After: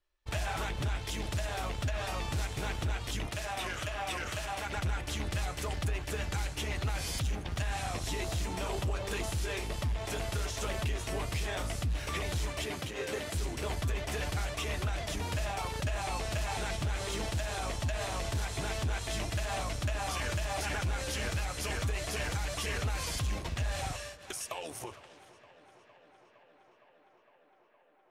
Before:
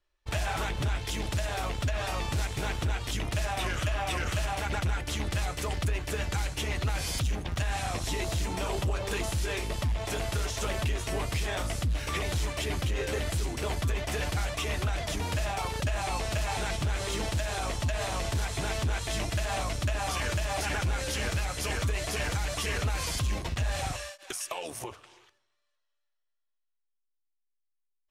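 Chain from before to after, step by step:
0:03.27–0:04.76: low-shelf EQ 210 Hz −8 dB
0:12.65–0:13.35: high-pass filter 150 Hz 12 dB per octave
tape delay 461 ms, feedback 88%, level −18 dB, low-pass 4,600 Hz
level −3.5 dB

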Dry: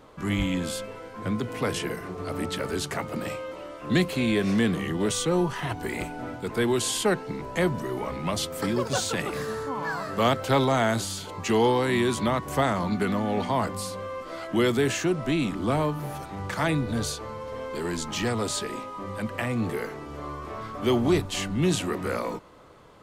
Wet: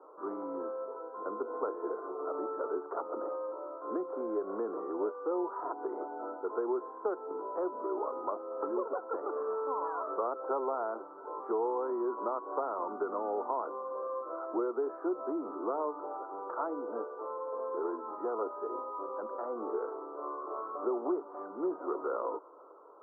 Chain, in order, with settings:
Butterworth high-pass 350 Hz 36 dB per octave
downward compressor, threshold −28 dBFS, peak gain reduction 9.5 dB
Chebyshev low-pass with heavy ripple 1,400 Hz, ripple 3 dB

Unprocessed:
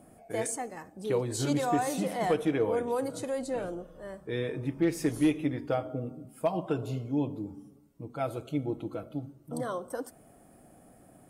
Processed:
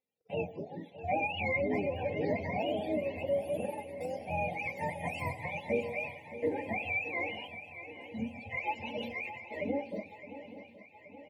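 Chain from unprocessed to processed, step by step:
frequency axis turned over on the octave scale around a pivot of 550 Hz
Chebyshev band-stop filter 840–2,000 Hz, order 3
noise gate −53 dBFS, range −34 dB
parametric band 3,100 Hz +5 dB 1.2 octaves
comb filter 3.8 ms, depth 59%
0:03.57–0:04.06: transient designer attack +4 dB, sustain −6 dB
0:07.47–0:08.42: gain on a spectral selection 290–3,800 Hz −18 dB
in parallel at −2 dB: brickwall limiter −30 dBFS, peak gain reduction 10.5 dB
0:02.01–0:02.47: on the sum: high shelf with overshoot 5,800 Hz −6.5 dB, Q 1.5
on a send: feedback echo with a long and a short gap by turns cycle 824 ms, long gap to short 3 to 1, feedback 56%, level −14 dB
0:08.80–0:09.55: on the sum: level that may fall only so fast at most 43 dB per second
level −3 dB

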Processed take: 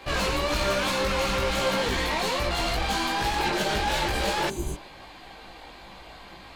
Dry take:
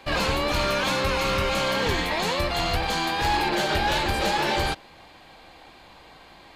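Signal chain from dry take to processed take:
soft clipping −27 dBFS, distortion −10 dB
multi-voice chorus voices 6, 1.2 Hz, delay 18 ms, depth 3 ms
healed spectral selection 0:04.52–0:04.74, 440–5,900 Hz after
level +6.5 dB

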